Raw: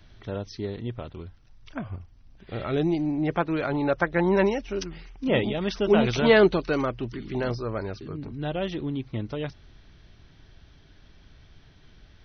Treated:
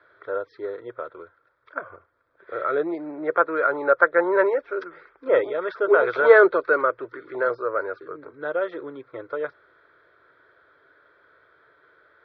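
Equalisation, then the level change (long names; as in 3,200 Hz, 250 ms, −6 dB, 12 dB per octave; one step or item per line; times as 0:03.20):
high-frequency loss of the air 450 metres
loudspeaker in its box 480–5,000 Hz, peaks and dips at 500 Hz +6 dB, 800 Hz +9 dB, 1,400 Hz +10 dB, 3,200 Hz +8 dB
phaser with its sweep stopped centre 790 Hz, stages 6
+6.5 dB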